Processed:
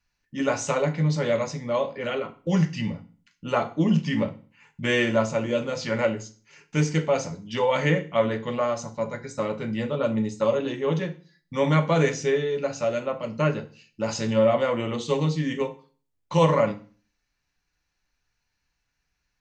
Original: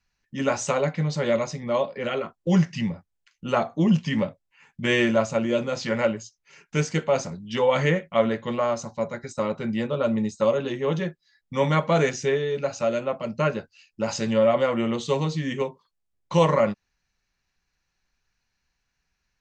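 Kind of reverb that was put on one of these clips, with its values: FDN reverb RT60 0.4 s, low-frequency decay 1.25×, high-frequency decay 0.95×, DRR 6.5 dB; gain -1.5 dB

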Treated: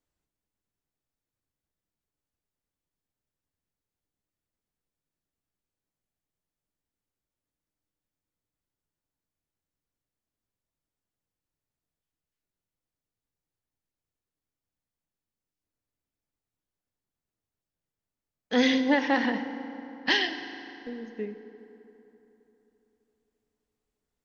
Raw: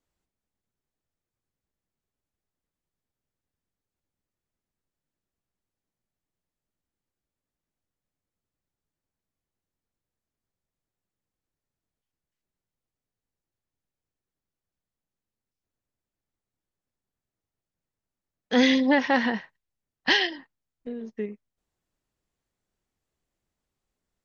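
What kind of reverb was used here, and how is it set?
FDN reverb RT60 3.4 s, high-frequency decay 0.6×, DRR 8.5 dB; gain -3 dB

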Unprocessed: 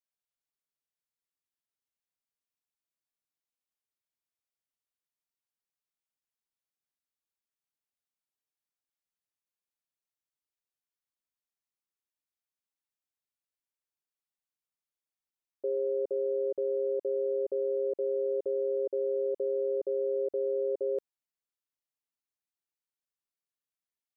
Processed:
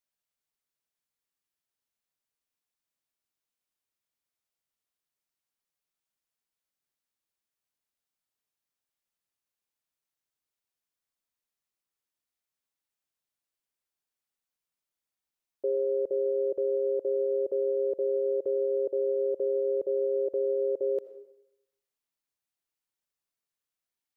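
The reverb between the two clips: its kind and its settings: digital reverb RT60 0.83 s, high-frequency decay 0.9×, pre-delay 40 ms, DRR 12.5 dB; gain +3 dB

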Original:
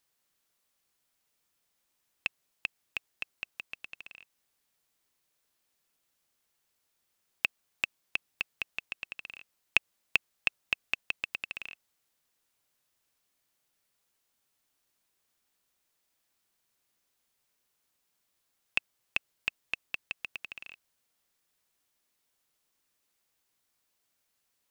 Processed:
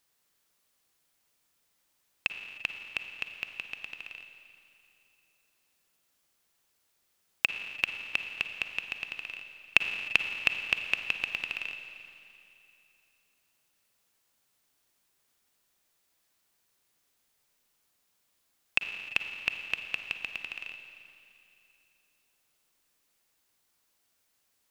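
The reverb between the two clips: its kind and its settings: Schroeder reverb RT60 2.8 s, DRR 6.5 dB; gain +3 dB

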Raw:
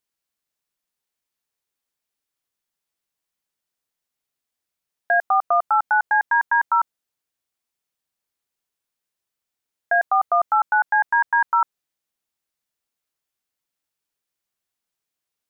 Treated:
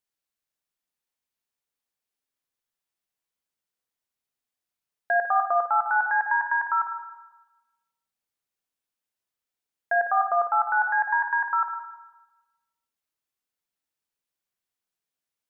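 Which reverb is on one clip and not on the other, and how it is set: spring tank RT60 1.1 s, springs 50/54 ms, chirp 40 ms, DRR 5.5 dB; gain -5 dB

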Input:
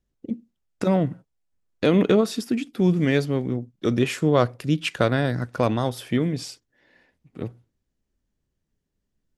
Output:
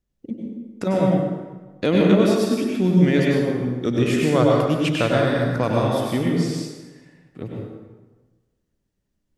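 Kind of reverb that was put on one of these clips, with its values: plate-style reverb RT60 1.3 s, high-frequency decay 0.7×, pre-delay 85 ms, DRR -2.5 dB; gain -1.5 dB

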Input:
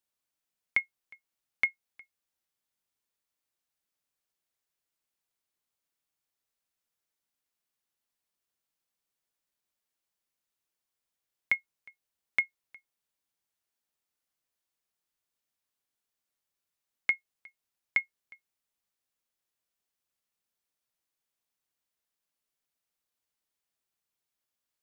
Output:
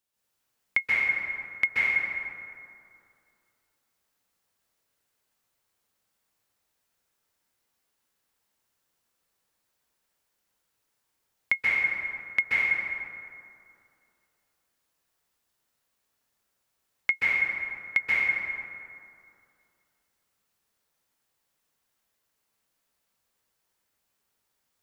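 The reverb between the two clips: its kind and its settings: plate-style reverb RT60 2.5 s, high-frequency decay 0.45×, pre-delay 0.12 s, DRR -9 dB; gain +2 dB

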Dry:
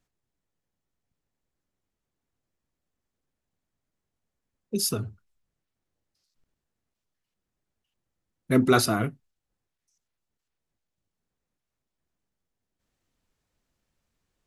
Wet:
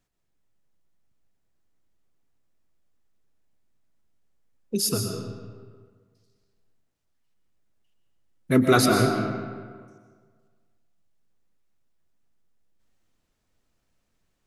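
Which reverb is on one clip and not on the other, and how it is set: digital reverb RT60 1.7 s, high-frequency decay 0.65×, pre-delay 85 ms, DRR 3 dB; gain +1.5 dB

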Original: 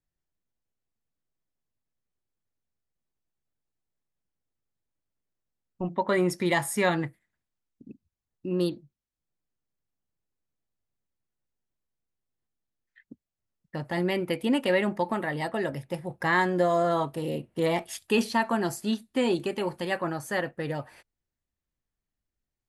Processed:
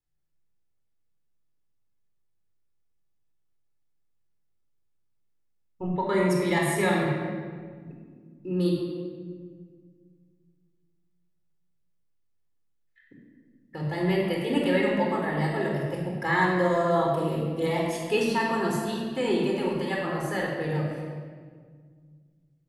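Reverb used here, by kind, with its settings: shoebox room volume 2500 m³, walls mixed, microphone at 4.1 m; gain -5.5 dB

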